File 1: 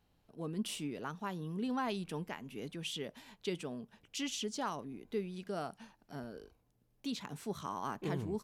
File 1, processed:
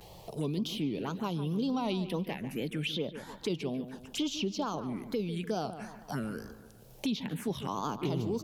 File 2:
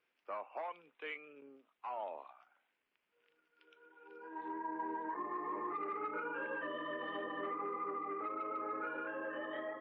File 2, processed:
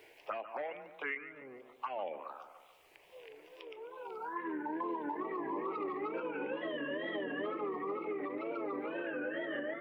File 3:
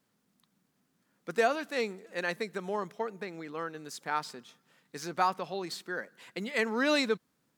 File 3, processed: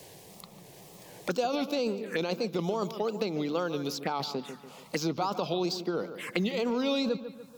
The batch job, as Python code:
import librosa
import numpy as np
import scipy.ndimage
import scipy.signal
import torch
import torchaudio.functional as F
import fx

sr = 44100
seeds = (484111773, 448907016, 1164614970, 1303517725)

p1 = fx.over_compress(x, sr, threshold_db=-36.0, ratio=-0.5)
p2 = x + F.gain(torch.from_numpy(p1), 2.0).numpy()
p3 = fx.env_phaser(p2, sr, low_hz=230.0, high_hz=1800.0, full_db=-29.0)
p4 = fx.wow_flutter(p3, sr, seeds[0], rate_hz=2.1, depth_cents=140.0)
p5 = fx.echo_wet_lowpass(p4, sr, ms=145, feedback_pct=32, hz=2700.0, wet_db=-13.0)
y = fx.band_squash(p5, sr, depth_pct=70)